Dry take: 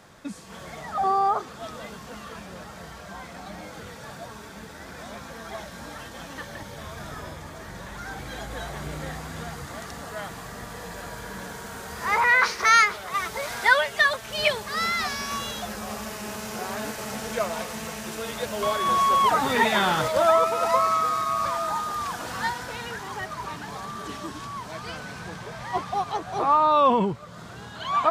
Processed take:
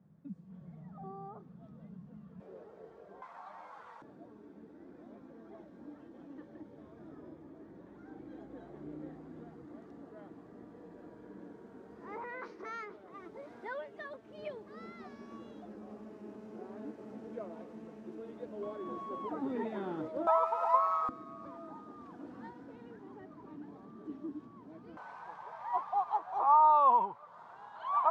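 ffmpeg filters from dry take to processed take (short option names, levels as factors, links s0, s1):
-af "asetnsamples=n=441:p=0,asendcmd='2.4 bandpass f 420;3.22 bandpass f 1000;4.02 bandpass f 310;20.27 bandpass f 910;21.09 bandpass f 290;24.97 bandpass f 920',bandpass=f=170:t=q:w=4.5:csg=0"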